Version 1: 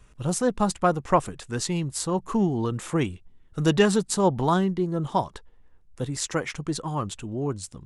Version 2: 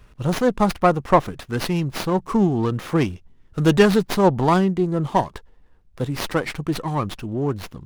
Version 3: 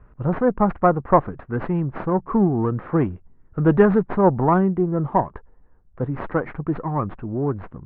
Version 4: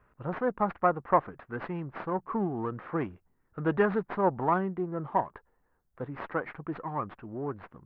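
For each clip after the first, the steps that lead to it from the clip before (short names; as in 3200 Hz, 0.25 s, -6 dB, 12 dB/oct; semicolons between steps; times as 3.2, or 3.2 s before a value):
running maximum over 5 samples; gain +5 dB
LPF 1600 Hz 24 dB/oct
tilt +3 dB/oct; gain -6.5 dB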